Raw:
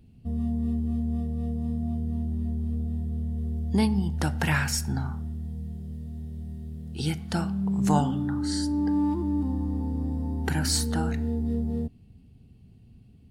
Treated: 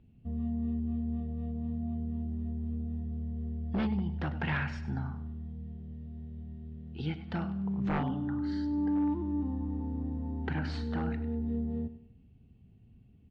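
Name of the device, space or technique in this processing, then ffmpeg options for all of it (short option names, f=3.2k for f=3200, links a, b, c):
synthesiser wavefolder: -af "aecho=1:1:99|198|297|396:0.2|0.0738|0.0273|0.0101,aeval=exprs='0.126*(abs(mod(val(0)/0.126+3,4)-2)-1)':c=same,lowpass=f=3.2k:w=0.5412,lowpass=f=3.2k:w=1.3066,volume=-6dB"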